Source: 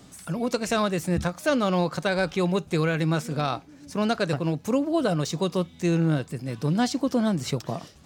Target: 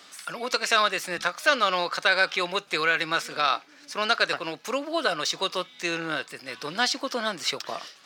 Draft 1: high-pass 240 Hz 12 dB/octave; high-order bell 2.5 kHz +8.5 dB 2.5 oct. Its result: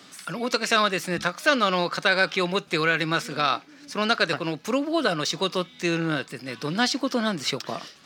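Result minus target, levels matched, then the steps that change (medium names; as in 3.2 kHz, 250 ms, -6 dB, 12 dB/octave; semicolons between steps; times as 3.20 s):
250 Hz band +8.0 dB
change: high-pass 520 Hz 12 dB/octave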